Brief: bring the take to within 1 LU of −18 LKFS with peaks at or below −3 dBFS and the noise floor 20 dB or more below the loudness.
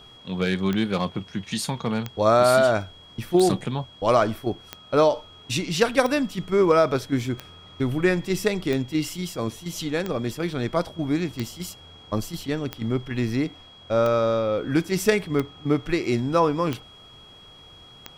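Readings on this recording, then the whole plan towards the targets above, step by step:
number of clicks 14; interfering tone 3,300 Hz; level of the tone −47 dBFS; integrated loudness −24.0 LKFS; sample peak −6.5 dBFS; target loudness −18.0 LKFS
→ click removal
notch filter 3,300 Hz, Q 30
level +6 dB
brickwall limiter −3 dBFS

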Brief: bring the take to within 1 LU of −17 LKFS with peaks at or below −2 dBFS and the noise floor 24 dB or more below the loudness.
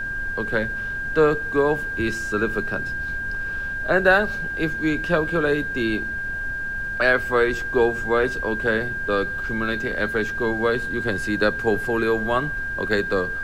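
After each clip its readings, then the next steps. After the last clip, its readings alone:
interfering tone 1,600 Hz; level of the tone −26 dBFS; background noise floor −28 dBFS; target noise floor −47 dBFS; integrated loudness −22.5 LKFS; sample peak −4.5 dBFS; target loudness −17.0 LKFS
→ notch filter 1,600 Hz, Q 30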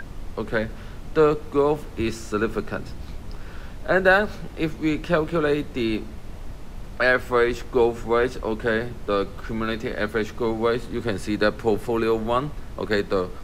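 interfering tone none found; background noise floor −37 dBFS; target noise floor −48 dBFS
→ noise reduction from a noise print 11 dB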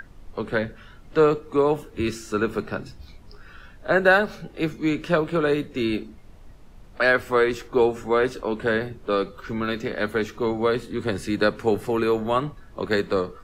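background noise floor −46 dBFS; target noise floor −48 dBFS
→ noise reduction from a noise print 6 dB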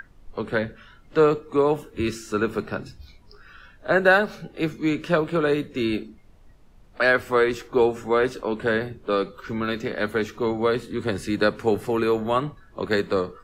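background noise floor −51 dBFS; integrated loudness −24.0 LKFS; sample peak −5.0 dBFS; target loudness −17.0 LKFS
→ level +7 dB
brickwall limiter −2 dBFS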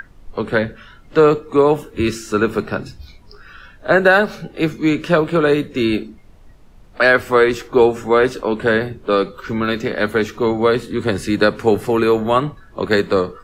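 integrated loudness −17.5 LKFS; sample peak −2.0 dBFS; background noise floor −44 dBFS

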